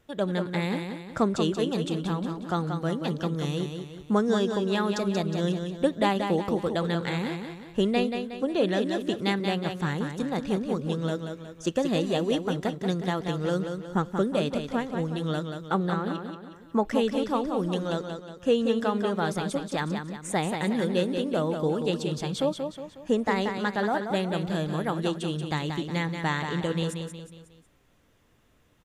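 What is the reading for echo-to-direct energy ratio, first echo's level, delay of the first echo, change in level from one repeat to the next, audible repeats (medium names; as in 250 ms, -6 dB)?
-5.5 dB, -6.5 dB, 182 ms, -7.0 dB, 4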